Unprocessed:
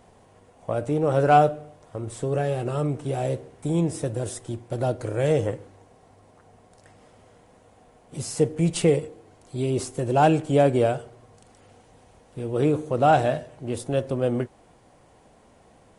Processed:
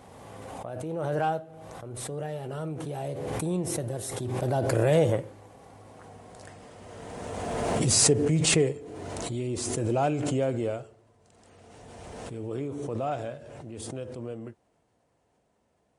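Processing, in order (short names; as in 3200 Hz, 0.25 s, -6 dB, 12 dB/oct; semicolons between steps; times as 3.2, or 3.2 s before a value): Doppler pass-by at 6.28, 22 m/s, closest 15 m; HPF 49 Hz; backwards sustainer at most 22 dB/s; gain +6 dB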